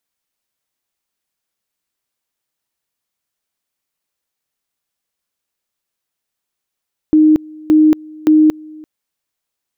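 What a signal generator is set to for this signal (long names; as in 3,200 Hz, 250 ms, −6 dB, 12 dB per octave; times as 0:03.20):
tone at two levels in turn 309 Hz −5.5 dBFS, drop 25.5 dB, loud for 0.23 s, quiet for 0.34 s, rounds 3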